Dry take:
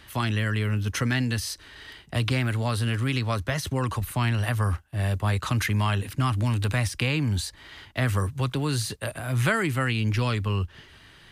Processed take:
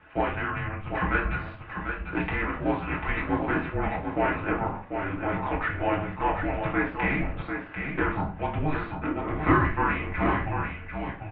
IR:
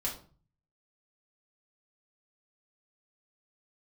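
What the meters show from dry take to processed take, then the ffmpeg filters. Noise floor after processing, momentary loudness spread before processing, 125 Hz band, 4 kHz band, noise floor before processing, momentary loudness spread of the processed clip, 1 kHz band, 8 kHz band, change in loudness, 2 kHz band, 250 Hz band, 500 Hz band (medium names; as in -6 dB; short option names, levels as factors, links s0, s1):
-41 dBFS, 6 LU, -8.5 dB, -14.0 dB, -52 dBFS, 7 LU, +5.0 dB, under -40 dB, -2.0 dB, +1.5 dB, +0.5 dB, +2.5 dB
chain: -filter_complex "[0:a]aeval=exprs='0.316*(cos(1*acos(clip(val(0)/0.316,-1,1)))-cos(1*PI/2))+0.0355*(cos(3*acos(clip(val(0)/0.316,-1,1)))-cos(3*PI/2))+0.0224*(cos(6*acos(clip(val(0)/0.316,-1,1)))-cos(6*PI/2))':c=same,aemphasis=mode=reproduction:type=riaa,aecho=1:1:744:0.473[s0];[1:a]atrim=start_sample=2205[s1];[s0][s1]afir=irnorm=-1:irlink=0,highpass=f=370:t=q:w=0.5412,highpass=f=370:t=q:w=1.307,lowpass=f=2800:t=q:w=0.5176,lowpass=f=2800:t=q:w=0.7071,lowpass=f=2800:t=q:w=1.932,afreqshift=-300,volume=1.5"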